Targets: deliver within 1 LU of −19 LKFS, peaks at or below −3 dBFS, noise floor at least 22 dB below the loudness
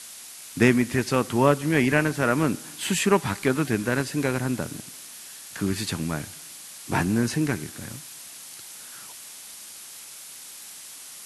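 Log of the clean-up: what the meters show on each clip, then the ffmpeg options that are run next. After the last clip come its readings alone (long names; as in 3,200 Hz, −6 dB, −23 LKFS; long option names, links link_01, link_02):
background noise floor −43 dBFS; target noise floor −47 dBFS; integrated loudness −24.5 LKFS; sample peak −5.0 dBFS; target loudness −19.0 LKFS
→ -af "afftdn=noise_reduction=6:noise_floor=-43"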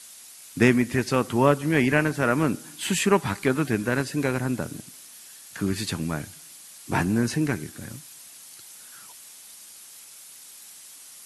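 background noise floor −46 dBFS; target noise floor −47 dBFS
→ -af "afftdn=noise_reduction=6:noise_floor=-46"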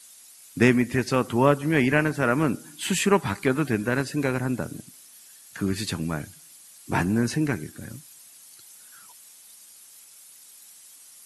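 background noise floor −50 dBFS; integrated loudness −24.5 LKFS; sample peak −5.0 dBFS; target loudness −19.0 LKFS
→ -af "volume=5.5dB,alimiter=limit=-3dB:level=0:latency=1"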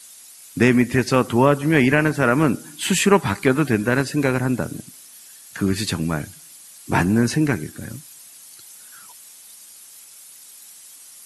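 integrated loudness −19.5 LKFS; sample peak −3.0 dBFS; background noise floor −45 dBFS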